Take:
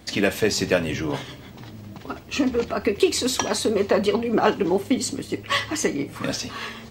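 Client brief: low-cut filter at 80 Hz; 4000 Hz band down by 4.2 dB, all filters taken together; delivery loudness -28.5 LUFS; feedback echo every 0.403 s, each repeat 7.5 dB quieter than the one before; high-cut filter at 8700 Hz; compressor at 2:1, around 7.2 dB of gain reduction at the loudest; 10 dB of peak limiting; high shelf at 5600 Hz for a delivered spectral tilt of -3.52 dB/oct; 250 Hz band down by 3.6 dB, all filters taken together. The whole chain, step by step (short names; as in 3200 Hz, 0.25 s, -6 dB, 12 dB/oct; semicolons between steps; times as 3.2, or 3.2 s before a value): HPF 80 Hz; LPF 8700 Hz; bell 250 Hz -4.5 dB; bell 4000 Hz -7 dB; high shelf 5600 Hz +4 dB; compressor 2:1, threshold -28 dBFS; limiter -21 dBFS; feedback echo 0.403 s, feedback 42%, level -7.5 dB; gain +3.5 dB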